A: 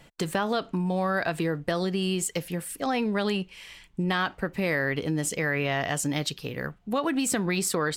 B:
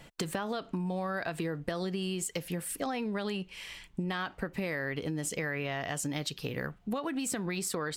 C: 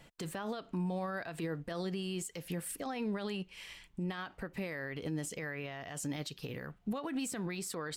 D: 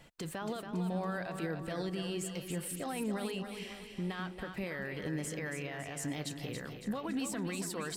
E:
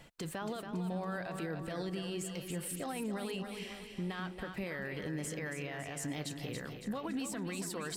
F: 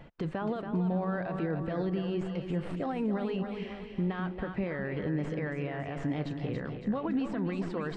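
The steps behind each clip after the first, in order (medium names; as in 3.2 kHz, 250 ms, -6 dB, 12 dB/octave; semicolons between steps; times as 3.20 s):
compression 6:1, threshold -32 dBFS, peak gain reduction 10.5 dB; trim +1 dB
peak limiter -29 dBFS, peak gain reduction 9.5 dB; upward expansion 1.5:1, over -46 dBFS; trim +1 dB
two-band feedback delay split 350 Hz, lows 208 ms, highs 279 ms, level -7 dB
reverse; upward compressor, threshold -44 dBFS; reverse; peak limiter -30 dBFS, peak gain reduction 4 dB
tracing distortion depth 0.031 ms; tape spacing loss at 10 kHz 39 dB; trim +8.5 dB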